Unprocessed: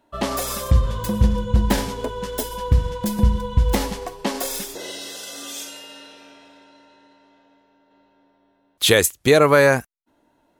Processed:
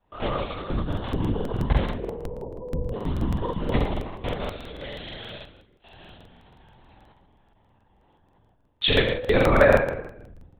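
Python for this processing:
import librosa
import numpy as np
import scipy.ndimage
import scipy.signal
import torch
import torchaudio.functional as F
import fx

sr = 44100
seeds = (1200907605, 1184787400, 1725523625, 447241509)

p1 = fx.level_steps(x, sr, step_db=9)
p2 = fx.steep_lowpass(p1, sr, hz=880.0, slope=48, at=(1.87, 2.94))
p3 = fx.gate_flip(p2, sr, shuts_db=-34.0, range_db=-29, at=(5.38, 5.85))
p4 = scipy.signal.sosfilt(scipy.signal.butter(2, 110.0, 'highpass', fs=sr, output='sos'), p3)
p5 = fx.notch_comb(p4, sr, f0_hz=350.0)
p6 = p5 + fx.echo_feedback(p5, sr, ms=64, feedback_pct=51, wet_db=-17.0, dry=0)
p7 = fx.room_shoebox(p6, sr, seeds[0], volume_m3=320.0, walls='mixed', distance_m=0.92)
p8 = fx.lpc_vocoder(p7, sr, seeds[1], excitation='whisper', order=10)
y = fx.buffer_crackle(p8, sr, first_s=0.88, period_s=0.16, block=2048, kind='repeat')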